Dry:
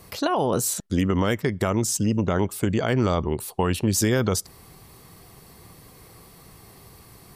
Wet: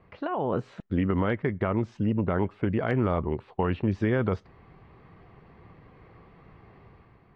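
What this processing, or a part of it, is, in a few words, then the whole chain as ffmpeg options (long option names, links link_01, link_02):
action camera in a waterproof case: -af "lowpass=frequency=2400:width=0.5412,lowpass=frequency=2400:width=1.3066,dynaudnorm=framelen=100:gausssize=9:maxgain=6dB,volume=-8.5dB" -ar 32000 -c:a aac -b:a 48k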